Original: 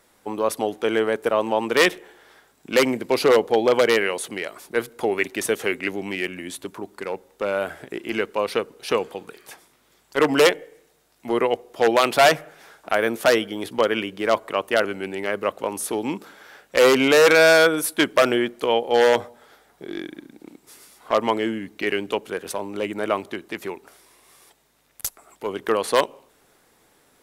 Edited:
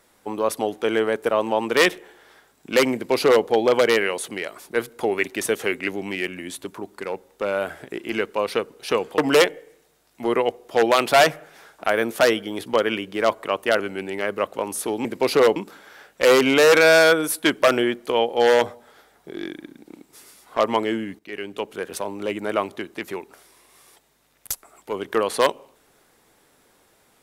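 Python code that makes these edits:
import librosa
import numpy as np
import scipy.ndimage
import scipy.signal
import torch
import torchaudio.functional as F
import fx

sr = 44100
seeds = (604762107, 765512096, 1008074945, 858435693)

y = fx.edit(x, sr, fx.duplicate(start_s=2.94, length_s=0.51, to_s=16.1),
    fx.cut(start_s=9.18, length_s=1.05),
    fx.fade_in_from(start_s=21.73, length_s=0.71, floor_db=-16.5), tone=tone)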